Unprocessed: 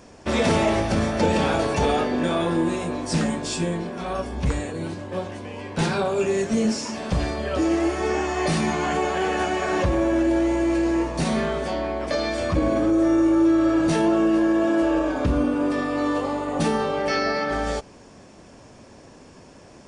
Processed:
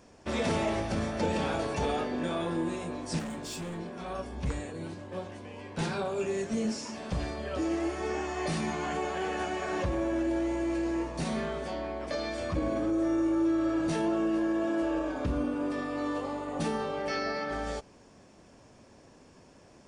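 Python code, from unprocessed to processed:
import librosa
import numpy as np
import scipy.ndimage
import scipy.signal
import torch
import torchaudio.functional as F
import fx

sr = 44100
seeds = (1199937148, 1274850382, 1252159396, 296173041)

y = fx.clip_hard(x, sr, threshold_db=-25.5, at=(3.19, 3.78))
y = y * 10.0 ** (-9.0 / 20.0)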